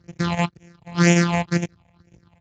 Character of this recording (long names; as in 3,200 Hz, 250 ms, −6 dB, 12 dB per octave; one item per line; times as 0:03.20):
a buzz of ramps at a fixed pitch in blocks of 256 samples
phaser sweep stages 6, 2 Hz, lowest notch 350–1,200 Hz
Speex